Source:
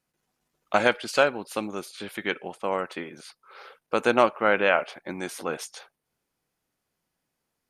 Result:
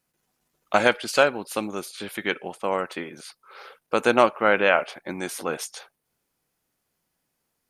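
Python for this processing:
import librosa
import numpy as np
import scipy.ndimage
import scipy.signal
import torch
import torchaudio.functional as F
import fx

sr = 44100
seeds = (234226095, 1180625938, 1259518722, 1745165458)

y = fx.high_shelf(x, sr, hz=8900.0, db=6.5)
y = y * librosa.db_to_amplitude(2.0)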